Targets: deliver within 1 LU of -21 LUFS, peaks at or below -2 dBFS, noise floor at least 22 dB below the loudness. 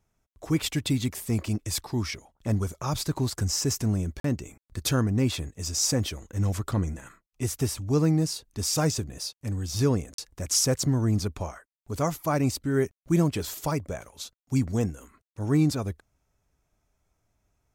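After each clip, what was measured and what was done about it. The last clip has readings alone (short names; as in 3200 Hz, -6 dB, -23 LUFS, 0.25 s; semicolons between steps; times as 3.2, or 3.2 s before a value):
dropouts 2; longest dropout 43 ms; loudness -27.5 LUFS; peak -11.5 dBFS; loudness target -21.0 LUFS
-> interpolate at 4.2/10.14, 43 ms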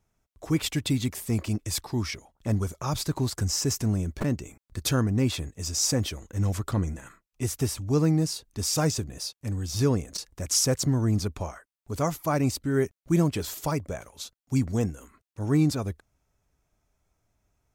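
dropouts 0; loudness -27.5 LUFS; peak -11.5 dBFS; loudness target -21.0 LUFS
-> gain +6.5 dB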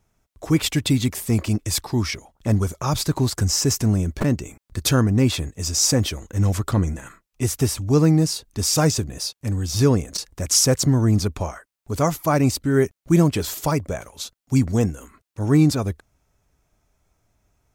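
loudness -21.0 LUFS; peak -5.0 dBFS; noise floor -80 dBFS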